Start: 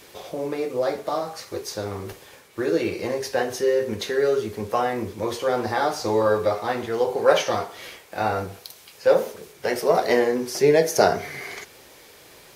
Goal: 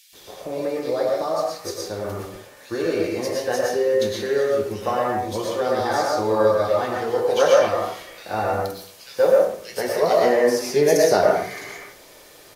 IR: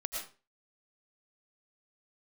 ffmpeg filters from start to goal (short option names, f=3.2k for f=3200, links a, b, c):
-filter_complex "[0:a]acrossover=split=2500[a][b];[a]adelay=130[c];[c][b]amix=inputs=2:normalize=0[d];[1:a]atrim=start_sample=2205,asetrate=41454,aresample=44100[e];[d][e]afir=irnorm=-1:irlink=0"